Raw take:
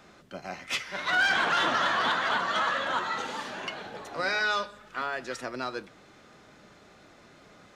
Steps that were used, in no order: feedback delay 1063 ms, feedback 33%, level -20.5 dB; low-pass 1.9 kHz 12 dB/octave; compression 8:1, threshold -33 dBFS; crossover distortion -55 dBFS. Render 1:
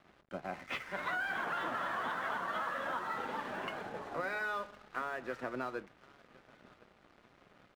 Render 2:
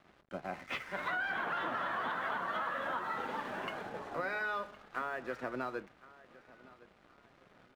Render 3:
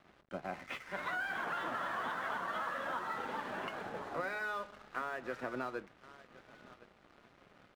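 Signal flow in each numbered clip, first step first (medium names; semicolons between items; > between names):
low-pass > compression > feedback delay > crossover distortion; low-pass > crossover distortion > compression > feedback delay; feedback delay > compression > low-pass > crossover distortion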